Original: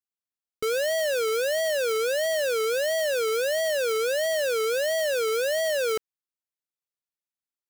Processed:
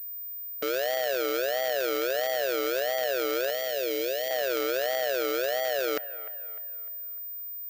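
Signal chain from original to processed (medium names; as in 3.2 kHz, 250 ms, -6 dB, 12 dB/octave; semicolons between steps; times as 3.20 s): spectral levelling over time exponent 0.6; high-pass 240 Hz 12 dB/octave; AM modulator 130 Hz, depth 85%; 3.50–4.31 s: Butterworth band-stop 1.1 kHz, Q 0.87; feedback echo behind a band-pass 301 ms, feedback 44%, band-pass 1.2 kHz, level -14 dB; class-D stage that switches slowly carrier 15 kHz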